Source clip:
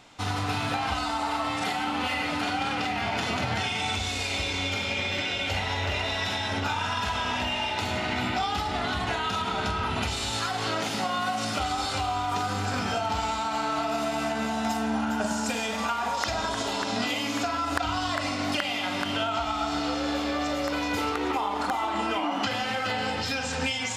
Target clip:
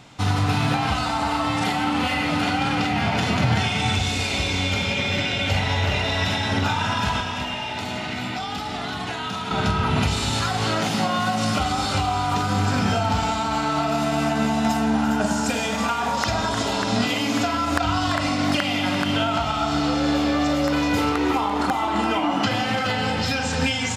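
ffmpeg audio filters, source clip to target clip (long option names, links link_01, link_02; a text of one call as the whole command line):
ffmpeg -i in.wav -filter_complex "[0:a]equalizer=frequency=140:width_type=o:width=1.3:gain=10.5,asettb=1/sr,asplit=3[link_01][link_02][link_03];[link_01]atrim=end=7.204[link_04];[link_02]atrim=start=7.2:end=9.51,asetpts=PTS-STARTPTS,afade=type=in:duration=0.004:curve=qsin,afade=type=out:start_time=2.306:duration=0.004:curve=qsin,acrossover=split=180|2600[link_05][link_06][link_07];[link_05]acompressor=threshold=-46dB:ratio=4[link_08];[link_06]acompressor=threshold=-33dB:ratio=4[link_09];[link_07]acompressor=threshold=-39dB:ratio=4[link_10];[link_08][link_09][link_10]amix=inputs=3:normalize=0[link_11];[link_03]atrim=start=9.506[link_12];[link_04][link_11]acrossfade=duration=0.004:curve1=hsin:curve2=qsin[link_13];[link_13][link_12]acrossfade=duration=0.004:curve1=qsin:curve2=hsin,aecho=1:1:341:0.316,volume=4dB" out.wav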